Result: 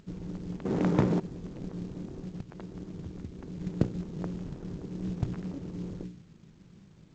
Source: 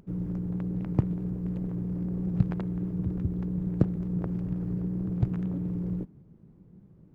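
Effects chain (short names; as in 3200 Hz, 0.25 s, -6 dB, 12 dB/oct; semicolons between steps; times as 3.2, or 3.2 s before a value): notches 60/120/180/240/300/360/420/480/540 Hz; dynamic EQ 110 Hz, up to -4 dB, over -42 dBFS, Q 1.1; 0.65–1.2 overdrive pedal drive 29 dB, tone 2000 Hz, clips at -12 dBFS; 2.05–3.61 compressor 20:1, threshold -36 dBFS, peak gain reduction 16 dB; companded quantiser 6-bit; G.722 64 kbps 16000 Hz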